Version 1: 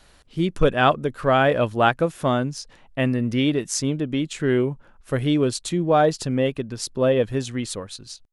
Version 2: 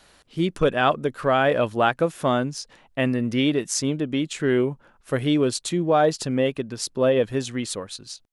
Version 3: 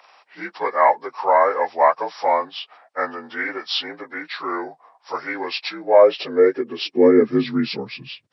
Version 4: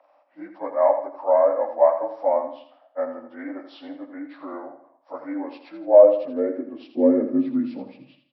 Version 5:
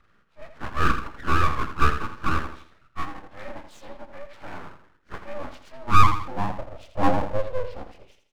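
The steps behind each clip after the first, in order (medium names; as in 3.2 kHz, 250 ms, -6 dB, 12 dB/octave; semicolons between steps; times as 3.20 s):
bass shelf 94 Hz -12 dB; in parallel at +1 dB: peak limiter -13 dBFS, peak gain reduction 9 dB; on the sum: trim -5.5 dB
frequency axis rescaled in octaves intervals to 82%; high-pass sweep 780 Hz -> 110 Hz, 5.74–8.26 s; trim +3.5 dB
two resonant band-passes 410 Hz, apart 0.98 oct; on a send: feedback delay 82 ms, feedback 39%, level -9 dB; on the sum: trim +5 dB
full-wave rectifier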